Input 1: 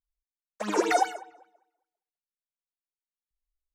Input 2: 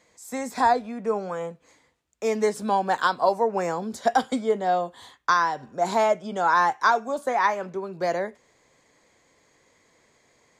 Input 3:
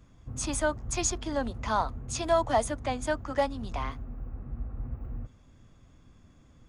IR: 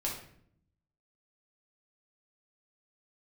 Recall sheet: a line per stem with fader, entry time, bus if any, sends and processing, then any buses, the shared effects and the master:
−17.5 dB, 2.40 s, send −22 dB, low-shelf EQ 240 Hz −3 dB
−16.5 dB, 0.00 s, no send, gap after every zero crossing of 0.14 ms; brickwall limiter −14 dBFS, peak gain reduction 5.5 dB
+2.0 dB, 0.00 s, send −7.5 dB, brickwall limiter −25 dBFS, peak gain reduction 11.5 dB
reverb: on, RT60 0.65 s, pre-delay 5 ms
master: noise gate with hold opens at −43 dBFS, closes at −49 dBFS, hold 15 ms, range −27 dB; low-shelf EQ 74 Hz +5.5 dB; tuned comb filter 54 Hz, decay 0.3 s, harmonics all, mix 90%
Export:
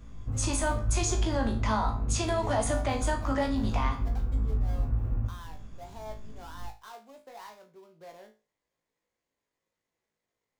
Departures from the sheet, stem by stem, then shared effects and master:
stem 1: entry 2.40 s → 1.75 s
stem 3 +2.0 dB → +8.5 dB
master: missing noise gate with hold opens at −43 dBFS, closes at −49 dBFS, hold 15 ms, range −27 dB

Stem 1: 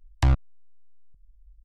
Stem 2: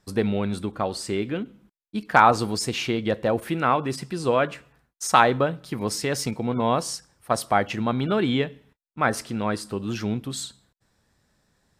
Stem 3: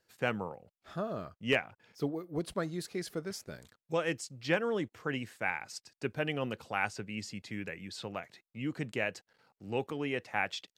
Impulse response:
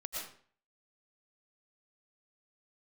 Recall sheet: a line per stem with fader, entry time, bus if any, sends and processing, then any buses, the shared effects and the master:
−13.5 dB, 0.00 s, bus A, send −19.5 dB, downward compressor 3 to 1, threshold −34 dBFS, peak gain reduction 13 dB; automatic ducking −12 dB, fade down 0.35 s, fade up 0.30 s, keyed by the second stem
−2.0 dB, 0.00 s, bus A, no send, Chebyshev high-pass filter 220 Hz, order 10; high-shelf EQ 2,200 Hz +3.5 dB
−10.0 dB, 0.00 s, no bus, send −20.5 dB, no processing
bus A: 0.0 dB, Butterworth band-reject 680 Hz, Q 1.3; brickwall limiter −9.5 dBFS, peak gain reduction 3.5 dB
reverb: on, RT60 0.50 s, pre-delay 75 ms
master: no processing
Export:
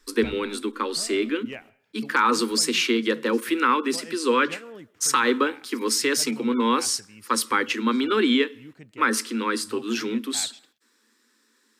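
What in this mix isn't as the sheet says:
stem 1: missing downward compressor 3 to 1, threshold −34 dBFS, peak gain reduction 13 dB
stem 2 −2.0 dB → +4.5 dB

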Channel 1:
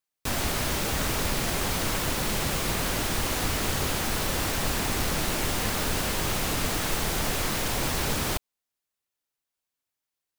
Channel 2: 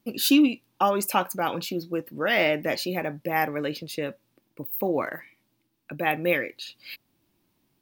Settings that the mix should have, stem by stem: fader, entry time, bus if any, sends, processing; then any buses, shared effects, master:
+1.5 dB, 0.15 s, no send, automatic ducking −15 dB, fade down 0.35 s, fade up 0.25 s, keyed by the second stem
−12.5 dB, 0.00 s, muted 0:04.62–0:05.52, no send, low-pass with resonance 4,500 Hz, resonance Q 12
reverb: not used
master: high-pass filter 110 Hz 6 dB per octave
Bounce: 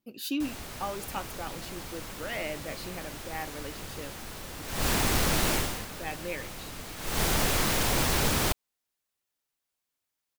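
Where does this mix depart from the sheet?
stem 2: missing low-pass with resonance 4,500 Hz, resonance Q 12
master: missing high-pass filter 110 Hz 6 dB per octave

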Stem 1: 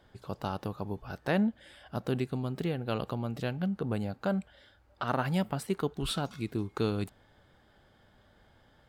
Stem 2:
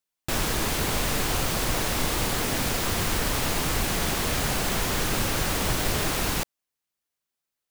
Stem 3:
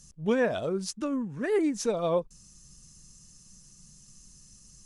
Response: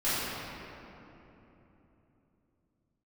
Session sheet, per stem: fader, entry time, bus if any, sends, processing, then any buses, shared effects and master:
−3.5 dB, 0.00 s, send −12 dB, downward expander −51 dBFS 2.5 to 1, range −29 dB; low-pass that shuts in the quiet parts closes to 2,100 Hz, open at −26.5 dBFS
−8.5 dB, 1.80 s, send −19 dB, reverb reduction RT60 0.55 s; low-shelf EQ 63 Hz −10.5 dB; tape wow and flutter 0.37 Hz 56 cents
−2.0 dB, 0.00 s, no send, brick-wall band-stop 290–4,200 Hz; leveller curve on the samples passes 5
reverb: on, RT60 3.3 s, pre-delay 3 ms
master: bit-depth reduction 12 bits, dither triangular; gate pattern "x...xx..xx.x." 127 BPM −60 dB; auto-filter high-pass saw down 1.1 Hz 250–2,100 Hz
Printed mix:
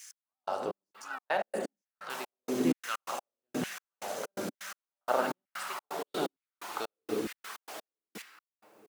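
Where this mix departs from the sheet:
stem 2 −8.5 dB → −16.5 dB
stem 3 −2.0 dB → −12.0 dB

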